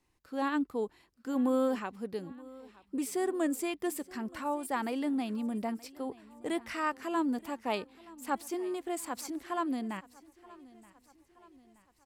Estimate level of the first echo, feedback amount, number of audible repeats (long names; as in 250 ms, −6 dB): −21.0 dB, 52%, 3